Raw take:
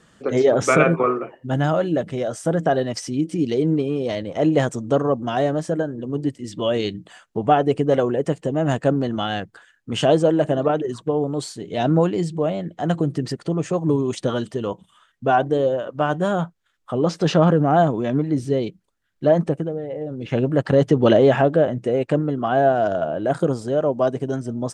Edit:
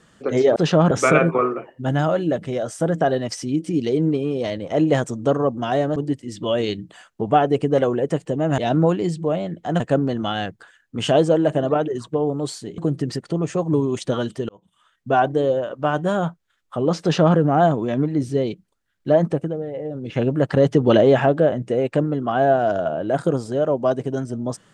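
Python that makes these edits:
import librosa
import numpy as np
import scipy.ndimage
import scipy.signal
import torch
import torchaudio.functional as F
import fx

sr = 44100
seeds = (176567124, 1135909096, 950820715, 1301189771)

y = fx.edit(x, sr, fx.cut(start_s=5.61, length_s=0.51),
    fx.move(start_s=11.72, length_s=1.22, to_s=8.74),
    fx.fade_in_span(start_s=14.65, length_s=0.62),
    fx.duplicate(start_s=17.18, length_s=0.35, to_s=0.56), tone=tone)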